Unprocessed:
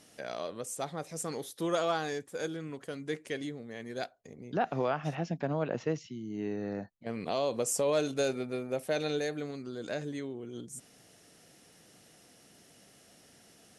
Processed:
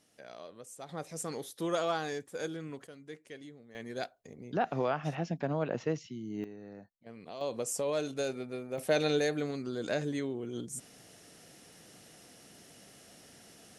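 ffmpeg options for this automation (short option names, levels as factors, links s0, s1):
-af "asetnsamples=n=441:p=0,asendcmd='0.89 volume volume -1.5dB;2.87 volume volume -11dB;3.75 volume volume -0.5dB;6.44 volume volume -12dB;7.41 volume volume -4dB;8.78 volume volume 3.5dB',volume=0.316"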